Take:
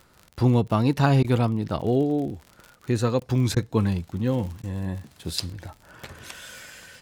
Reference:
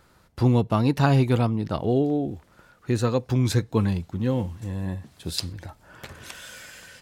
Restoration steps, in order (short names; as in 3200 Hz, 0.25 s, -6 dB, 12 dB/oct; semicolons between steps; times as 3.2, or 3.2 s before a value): de-click; interpolate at 1.23/3.2/3.55/4.62, 13 ms